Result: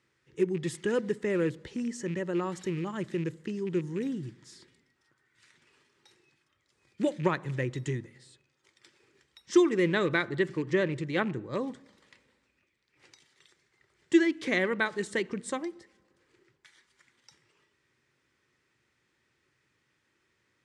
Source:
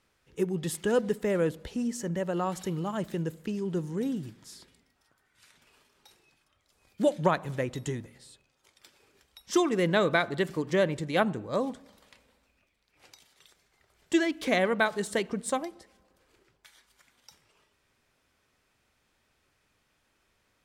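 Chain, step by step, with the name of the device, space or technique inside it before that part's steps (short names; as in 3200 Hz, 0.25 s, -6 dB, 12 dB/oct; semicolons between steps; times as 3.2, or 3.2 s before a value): car door speaker with a rattle (rattling part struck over -31 dBFS, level -35 dBFS; speaker cabinet 82–8800 Hz, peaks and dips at 130 Hz +8 dB, 350 Hz +8 dB, 690 Hz -9 dB, 1900 Hz +7 dB); 10.25–11.68 high shelf 6400 Hz -5.5 dB; gain -3.5 dB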